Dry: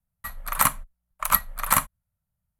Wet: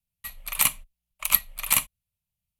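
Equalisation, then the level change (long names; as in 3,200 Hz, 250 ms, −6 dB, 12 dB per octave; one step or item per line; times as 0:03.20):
high shelf with overshoot 2,000 Hz +8.5 dB, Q 3
−7.5 dB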